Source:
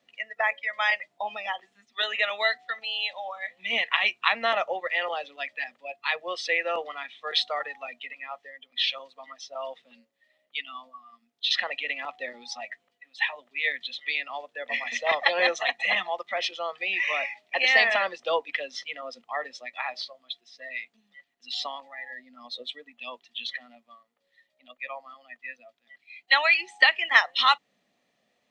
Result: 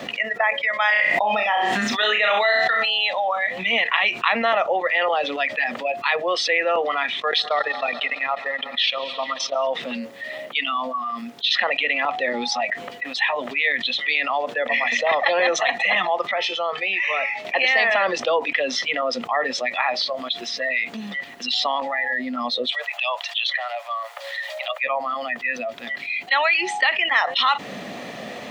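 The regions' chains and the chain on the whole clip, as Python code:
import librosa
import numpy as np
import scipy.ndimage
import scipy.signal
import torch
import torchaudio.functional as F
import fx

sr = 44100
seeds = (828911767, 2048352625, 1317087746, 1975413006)

y = fx.chain(x, sr, fx.room_flutter(wall_m=5.7, rt60_s=0.27),
    fx.sustainer(db_per_s=29.0), at=(0.81, 2.9))
y = fx.chain(y, sr, fx.echo_heads(ms=71, heads='second and third', feedback_pct=60, wet_db=-24.0),
    fx.transient(attack_db=0, sustain_db=-12), at=(7.2, 9.67))
y = fx.chain(y, sr, fx.peak_eq(hz=300.0, db=-4.5, octaves=0.34),
    fx.comb_fb(f0_hz=440.0, decay_s=0.23, harmonics='all', damping=0.0, mix_pct=70), at=(16.31, 17.45))
y = fx.chain(y, sr, fx.steep_highpass(hz=570.0, slope=72),
    fx.band_squash(depth_pct=40), at=(22.72, 24.84))
y = scipy.signal.sosfilt(scipy.signal.butter(2, 71.0, 'highpass', fs=sr, output='sos'), y)
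y = fx.high_shelf(y, sr, hz=3200.0, db=-9.5)
y = fx.env_flatten(y, sr, amount_pct=70)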